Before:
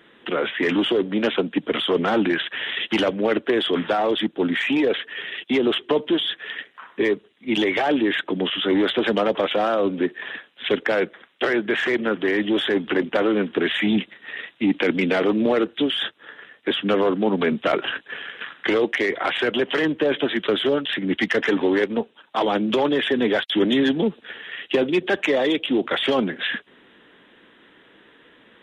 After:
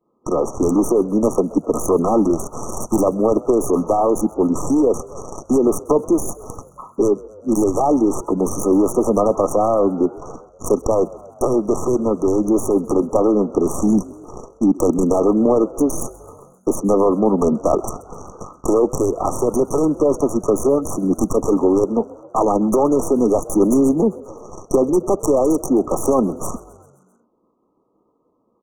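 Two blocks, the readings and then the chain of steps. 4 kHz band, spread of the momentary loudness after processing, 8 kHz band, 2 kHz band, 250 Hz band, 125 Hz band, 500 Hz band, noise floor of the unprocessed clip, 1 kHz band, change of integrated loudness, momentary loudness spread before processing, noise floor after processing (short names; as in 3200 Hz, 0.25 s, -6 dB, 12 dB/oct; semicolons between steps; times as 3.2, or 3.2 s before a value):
under -20 dB, 12 LU, n/a, under -40 dB, +5.0 dB, +7.0 dB, +5.0 dB, -55 dBFS, +4.5 dB, +4.0 dB, 8 LU, -63 dBFS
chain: tracing distortion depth 0.33 ms; expander -40 dBFS; high shelf 5200 Hz -9 dB; in parallel at -0.5 dB: compressor, threshold -33 dBFS, peak gain reduction 17.5 dB; on the sum: brick-wall FIR band-stop 1300–5600 Hz; on a send: frequency-shifting echo 0.131 s, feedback 63%, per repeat +46 Hz, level -21.5 dB; on the sum: gain +3.5 dB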